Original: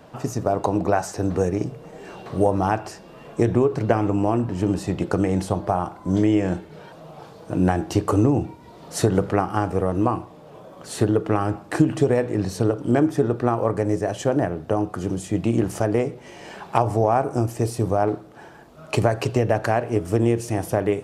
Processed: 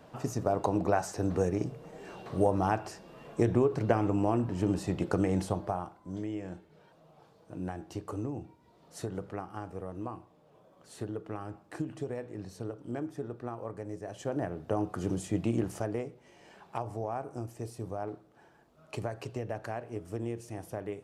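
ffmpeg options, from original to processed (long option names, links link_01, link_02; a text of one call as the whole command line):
ffmpeg -i in.wav -af "volume=5dB,afade=type=out:start_time=5.41:duration=0.6:silence=0.281838,afade=type=in:start_time=14:duration=1.13:silence=0.251189,afade=type=out:start_time=15.13:duration=1.01:silence=0.298538" out.wav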